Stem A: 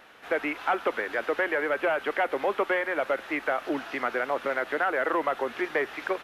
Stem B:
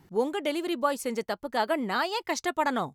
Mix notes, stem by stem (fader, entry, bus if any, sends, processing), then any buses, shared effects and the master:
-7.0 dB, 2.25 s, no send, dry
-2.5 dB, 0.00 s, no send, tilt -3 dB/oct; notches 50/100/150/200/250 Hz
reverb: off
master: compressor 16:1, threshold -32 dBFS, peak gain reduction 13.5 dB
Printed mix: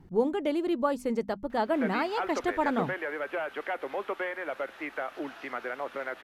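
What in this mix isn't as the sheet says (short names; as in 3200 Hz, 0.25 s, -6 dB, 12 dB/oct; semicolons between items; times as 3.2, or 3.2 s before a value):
stem A: entry 2.25 s -> 1.50 s; master: missing compressor 16:1, threshold -32 dBFS, peak gain reduction 13.5 dB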